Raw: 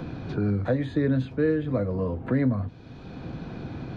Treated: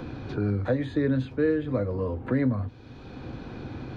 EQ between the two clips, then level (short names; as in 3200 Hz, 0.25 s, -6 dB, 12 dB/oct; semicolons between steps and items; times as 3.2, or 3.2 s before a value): bell 170 Hz -12 dB 0.3 oct; notch 670 Hz, Q 13; 0.0 dB